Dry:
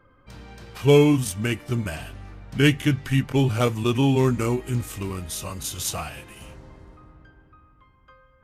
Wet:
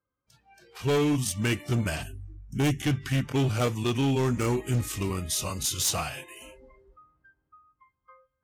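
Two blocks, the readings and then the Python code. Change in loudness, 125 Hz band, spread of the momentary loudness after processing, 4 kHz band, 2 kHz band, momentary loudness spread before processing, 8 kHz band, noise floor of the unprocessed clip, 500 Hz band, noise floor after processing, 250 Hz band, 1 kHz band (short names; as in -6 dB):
-4.5 dB, -4.5 dB, 11 LU, -2.0 dB, -4.5 dB, 17 LU, +1.5 dB, -58 dBFS, -7.0 dB, -82 dBFS, -5.5 dB, -3.0 dB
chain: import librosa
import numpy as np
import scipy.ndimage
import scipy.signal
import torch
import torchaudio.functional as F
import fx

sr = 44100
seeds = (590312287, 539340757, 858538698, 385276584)

y = fx.spec_box(x, sr, start_s=2.03, length_s=0.78, low_hz=420.0, high_hz=5300.0, gain_db=-8)
y = fx.noise_reduce_blind(y, sr, reduce_db=23)
y = scipy.signal.sosfilt(scipy.signal.butter(2, 40.0, 'highpass', fs=sr, output='sos'), y)
y = fx.dynamic_eq(y, sr, hz=5300.0, q=0.96, threshold_db=-47.0, ratio=4.0, max_db=5)
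y = fx.rider(y, sr, range_db=3, speed_s=0.5)
y = np.clip(y, -10.0 ** (-18.0 / 20.0), 10.0 ** (-18.0 / 20.0))
y = y * librosa.db_to_amplitude(-2.5)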